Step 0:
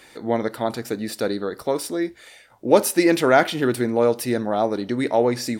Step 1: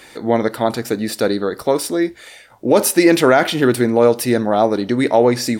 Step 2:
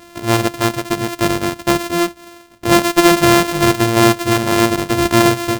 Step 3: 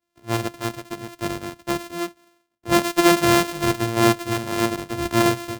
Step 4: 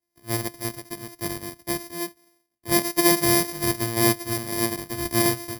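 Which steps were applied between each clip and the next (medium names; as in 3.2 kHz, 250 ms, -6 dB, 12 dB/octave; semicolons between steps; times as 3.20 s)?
loudness maximiser +7.5 dB; trim -1 dB
sorted samples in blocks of 128 samples; trim +1 dB
three bands expanded up and down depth 100%; trim -8 dB
bit-reversed sample order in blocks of 32 samples; trim -3 dB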